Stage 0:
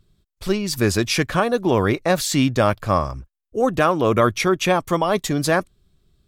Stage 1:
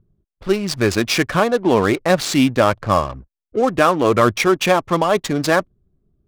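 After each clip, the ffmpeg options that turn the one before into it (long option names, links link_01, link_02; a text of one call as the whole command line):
ffmpeg -i in.wav -af "aphaser=in_gain=1:out_gain=1:delay=4.8:decay=0.24:speed=1.4:type=triangular,adynamicsmooth=sensitivity=5.5:basefreq=570,lowshelf=frequency=85:gain=-9.5,volume=3dB" out.wav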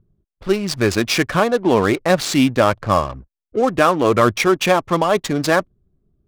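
ffmpeg -i in.wav -af anull out.wav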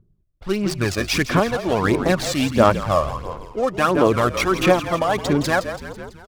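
ffmpeg -i in.wav -filter_complex "[0:a]asplit=8[link_01][link_02][link_03][link_04][link_05][link_06][link_07][link_08];[link_02]adelay=166,afreqshift=-40,volume=-10.5dB[link_09];[link_03]adelay=332,afreqshift=-80,volume=-15.2dB[link_10];[link_04]adelay=498,afreqshift=-120,volume=-20dB[link_11];[link_05]adelay=664,afreqshift=-160,volume=-24.7dB[link_12];[link_06]adelay=830,afreqshift=-200,volume=-29.4dB[link_13];[link_07]adelay=996,afreqshift=-240,volume=-34.2dB[link_14];[link_08]adelay=1162,afreqshift=-280,volume=-38.9dB[link_15];[link_01][link_09][link_10][link_11][link_12][link_13][link_14][link_15]amix=inputs=8:normalize=0,aphaser=in_gain=1:out_gain=1:delay=1.7:decay=0.5:speed=1.5:type=sinusoidal,volume=-4.5dB" out.wav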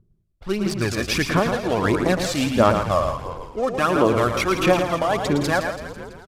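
ffmpeg -i in.wav -filter_complex "[0:a]asplit=2[link_01][link_02];[link_02]aecho=0:1:112:0.447[link_03];[link_01][link_03]amix=inputs=2:normalize=0,aresample=32000,aresample=44100,volume=-2dB" out.wav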